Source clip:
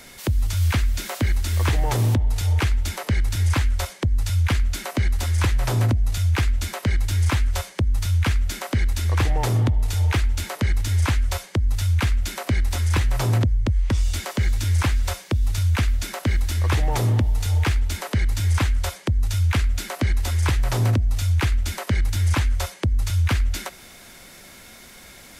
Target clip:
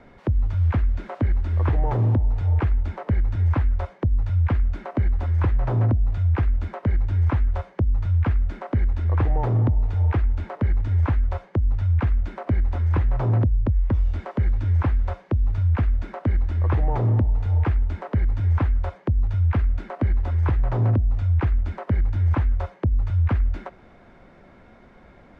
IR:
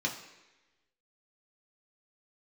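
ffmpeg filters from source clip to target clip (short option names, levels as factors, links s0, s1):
-af "lowpass=1100"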